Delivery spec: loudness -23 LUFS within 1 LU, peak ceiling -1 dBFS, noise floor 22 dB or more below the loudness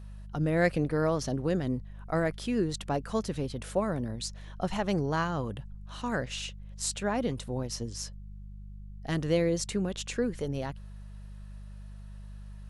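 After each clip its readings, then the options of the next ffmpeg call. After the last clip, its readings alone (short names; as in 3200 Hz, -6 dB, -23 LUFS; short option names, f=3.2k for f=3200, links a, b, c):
hum 50 Hz; harmonics up to 200 Hz; hum level -41 dBFS; loudness -31.5 LUFS; peak -13.5 dBFS; loudness target -23.0 LUFS
-> -af "bandreject=f=50:t=h:w=4,bandreject=f=100:t=h:w=4,bandreject=f=150:t=h:w=4,bandreject=f=200:t=h:w=4"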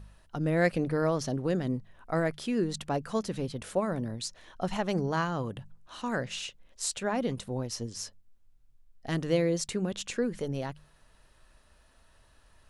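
hum none; loudness -32.0 LUFS; peak -13.5 dBFS; loudness target -23.0 LUFS
-> -af "volume=9dB"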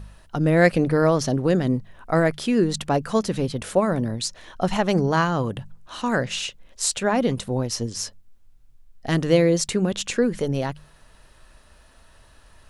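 loudness -23.0 LUFS; peak -4.5 dBFS; noise floor -53 dBFS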